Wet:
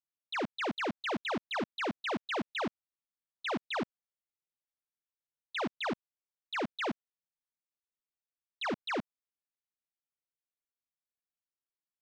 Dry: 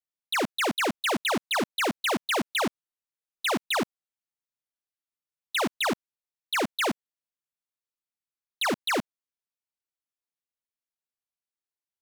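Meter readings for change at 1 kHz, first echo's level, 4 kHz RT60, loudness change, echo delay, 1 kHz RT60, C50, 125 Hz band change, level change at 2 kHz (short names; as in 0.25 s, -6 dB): -7.5 dB, none, none, -8.5 dB, none, none, none, -5.5 dB, -8.5 dB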